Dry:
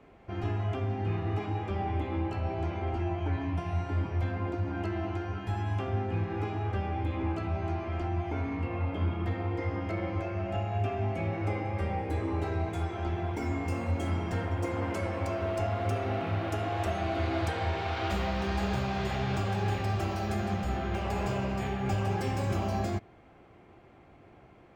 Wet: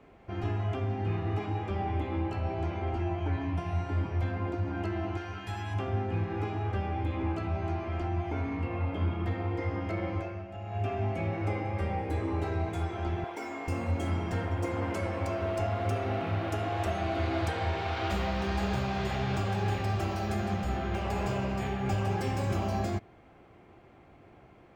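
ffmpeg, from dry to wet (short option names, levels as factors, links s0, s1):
-filter_complex "[0:a]asettb=1/sr,asplit=3[s0][s1][s2];[s0]atrim=end=5.174[s3];[s1]atrim=start=5.17:end=5.74,asetpts=PTS-STARTPTS,afade=t=in:d=0.004:c=qsin,afade=t=out:st=0.566:d=0.004:c=qsin,tiltshelf=f=1200:g=-5.5[s4];[s2]atrim=start=5.736[s5];[s3][s4]acrossfade=d=0.004:c1=hsin:c2=qsin[s6];[s6][s5]acrossfade=d=0.004:c1=qsin:c2=hsin,asettb=1/sr,asplit=3[s7][s8][s9];[s7]atrim=end=13.244[s10];[s8]atrim=start=13.24:end=13.68,asetpts=PTS-STARTPTS,afade=t=in:d=0.004:c=qsin,afade=t=out:st=0.436:d=0.004:c=qsin,highpass=420[s11];[s9]atrim=start=13.676[s12];[s10][s11]acrossfade=d=0.004:c1=hsin:c2=qsin[s13];[s13][s12]acrossfade=d=0.004:c1=qsin:c2=hsin,asplit=3[s14][s15][s16];[s14]atrim=end=10.47,asetpts=PTS-STARTPTS,afade=t=out:st=10.14:d=0.33:silence=0.316228[s17];[s15]atrim=start=10.47:end=10.58,asetpts=PTS-STARTPTS,volume=0.316[s18];[s16]atrim=start=10.58,asetpts=PTS-STARTPTS,afade=t=in:d=0.33:silence=0.316228[s19];[s17][s18][s19]concat=n=3:v=0:a=1"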